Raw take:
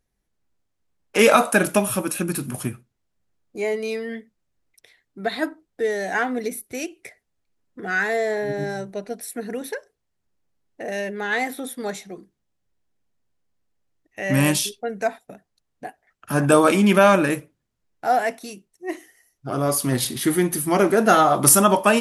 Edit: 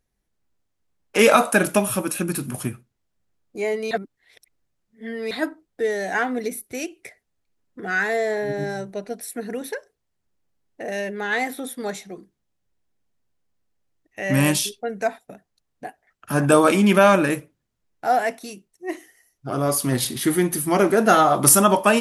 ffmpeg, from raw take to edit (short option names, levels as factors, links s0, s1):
-filter_complex "[0:a]asplit=3[s0][s1][s2];[s0]atrim=end=3.912[s3];[s1]atrim=start=3.908:end=5.312,asetpts=PTS-STARTPTS,areverse[s4];[s2]atrim=start=5.308[s5];[s3][s4]acrossfade=d=0.004:c1=hsin:c2=hsin[s6];[s6][s5]acrossfade=d=0.004:c1=hsin:c2=hsin"